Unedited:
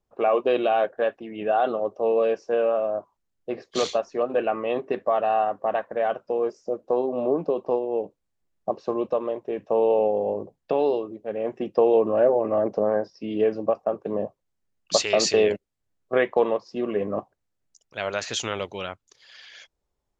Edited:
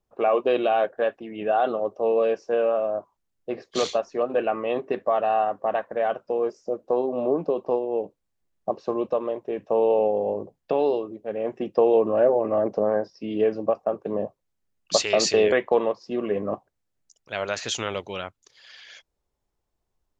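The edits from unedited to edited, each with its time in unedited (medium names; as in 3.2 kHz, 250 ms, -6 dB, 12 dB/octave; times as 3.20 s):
15.52–16.17 s: delete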